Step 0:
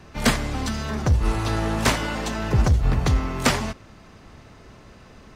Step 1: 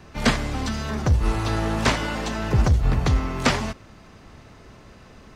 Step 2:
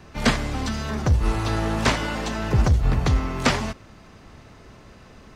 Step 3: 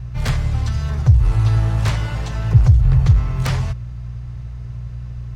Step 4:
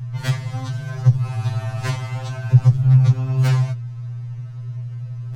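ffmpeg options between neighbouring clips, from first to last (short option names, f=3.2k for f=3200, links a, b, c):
-filter_complex "[0:a]acrossover=split=7200[a][b];[b]acompressor=threshold=-47dB:ratio=4:attack=1:release=60[c];[a][c]amix=inputs=2:normalize=0"
-af anull
-af "aeval=exprs='0.501*(cos(1*acos(clip(val(0)/0.501,-1,1)))-cos(1*PI/2))+0.2*(cos(3*acos(clip(val(0)/0.501,-1,1)))-cos(3*PI/2))+0.126*(cos(5*acos(clip(val(0)/0.501,-1,1)))-cos(5*PI/2))+0.0126*(cos(7*acos(clip(val(0)/0.501,-1,1)))-cos(7*PI/2))':c=same,aeval=exprs='val(0)+0.0112*(sin(2*PI*60*n/s)+sin(2*PI*2*60*n/s)/2+sin(2*PI*3*60*n/s)/3+sin(2*PI*4*60*n/s)/4+sin(2*PI*5*60*n/s)/5)':c=same,lowshelf=f=170:t=q:w=3:g=10.5,volume=-2dB"
-af "afftfilt=real='re*2.45*eq(mod(b,6),0)':imag='im*2.45*eq(mod(b,6),0)':win_size=2048:overlap=0.75"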